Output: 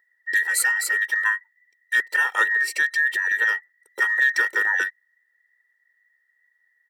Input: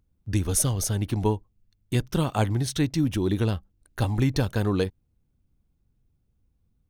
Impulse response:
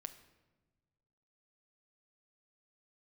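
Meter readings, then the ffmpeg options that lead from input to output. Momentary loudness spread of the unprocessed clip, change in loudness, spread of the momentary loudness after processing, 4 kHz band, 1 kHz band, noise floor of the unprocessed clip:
6 LU, +5.5 dB, 5 LU, +1.0 dB, +2.5 dB, −71 dBFS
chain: -af "afftfilt=real='real(if(between(b,1,1012),(2*floor((b-1)/92)+1)*92-b,b),0)':imag='imag(if(between(b,1,1012),(2*floor((b-1)/92)+1)*92-b,b),0)*if(between(b,1,1012),-1,1)':win_size=2048:overlap=0.75,highpass=frequency=230:width=0.5412,highpass=frequency=230:width=1.3066,aecho=1:1:2.2:0.9,volume=-1.5dB"

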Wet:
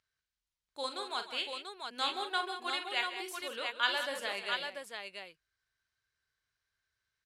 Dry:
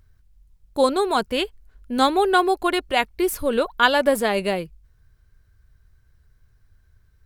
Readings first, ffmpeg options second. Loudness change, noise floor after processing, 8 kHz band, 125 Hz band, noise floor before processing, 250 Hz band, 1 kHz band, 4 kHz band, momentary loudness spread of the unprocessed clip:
−14.5 dB, below −85 dBFS, −13.5 dB, below −25 dB, −60 dBFS, −25.5 dB, −15.5 dB, −6.5 dB, 11 LU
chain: -af "lowpass=3800,aderivative,aecho=1:1:40|51|137|187|689:0.316|0.211|0.188|0.282|0.562"

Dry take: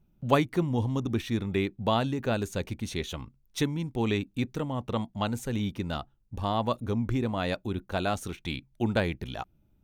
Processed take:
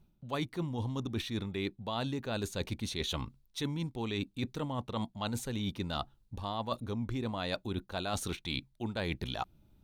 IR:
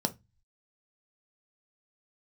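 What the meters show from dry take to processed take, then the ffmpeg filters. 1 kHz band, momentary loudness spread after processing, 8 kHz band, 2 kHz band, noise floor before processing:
−7.0 dB, 3 LU, −1.0 dB, −6.0 dB, −67 dBFS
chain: -af "equalizer=frequency=1000:width_type=o:width=0.67:gain=3,equalizer=frequency=4000:width_type=o:width=0.67:gain=8,equalizer=frequency=10000:width_type=o:width=0.67:gain=3,areverse,acompressor=threshold=-34dB:ratio=12,areverse,volume=2.5dB"

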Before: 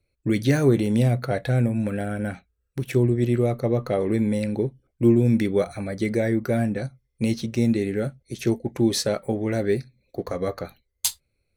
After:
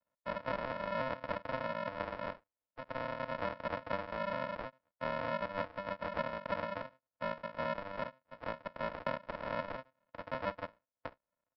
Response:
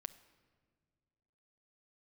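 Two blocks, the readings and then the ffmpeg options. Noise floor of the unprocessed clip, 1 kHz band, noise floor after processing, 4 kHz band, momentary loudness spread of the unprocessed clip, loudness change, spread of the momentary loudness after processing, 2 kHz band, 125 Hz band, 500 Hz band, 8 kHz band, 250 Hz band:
−75 dBFS, −1.0 dB, below −85 dBFS, −15.0 dB, 12 LU, −16.0 dB, 11 LU, −6.5 dB, −26.5 dB, −14.5 dB, below −40 dB, −24.5 dB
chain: -filter_complex "[0:a]highpass=270,lowpass=3000,aecho=1:1:1.4:0.78,aresample=11025,acrusher=samples=28:mix=1:aa=0.000001,aresample=44100,acompressor=threshold=-25dB:ratio=5,acrossover=split=420 2200:gain=0.0708 1 0.1[link_01][link_02][link_03];[link_01][link_02][link_03]amix=inputs=3:normalize=0,volume=1.5dB"

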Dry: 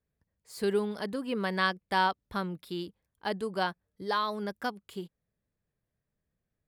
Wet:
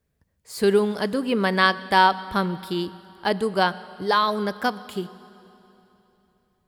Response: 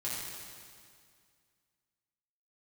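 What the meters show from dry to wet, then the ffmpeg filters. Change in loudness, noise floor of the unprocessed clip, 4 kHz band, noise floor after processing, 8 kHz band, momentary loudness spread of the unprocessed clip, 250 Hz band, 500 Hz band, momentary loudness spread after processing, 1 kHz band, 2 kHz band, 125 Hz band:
+9.5 dB, below −85 dBFS, +9.5 dB, −72 dBFS, +9.5 dB, 15 LU, +9.5 dB, +9.5 dB, 15 LU, +10.0 dB, +9.5 dB, +9.0 dB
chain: -filter_complex "[0:a]asplit=2[link_01][link_02];[1:a]atrim=start_sample=2205,asetrate=28665,aresample=44100[link_03];[link_02][link_03]afir=irnorm=-1:irlink=0,volume=-22dB[link_04];[link_01][link_04]amix=inputs=2:normalize=0,volume=9dB"

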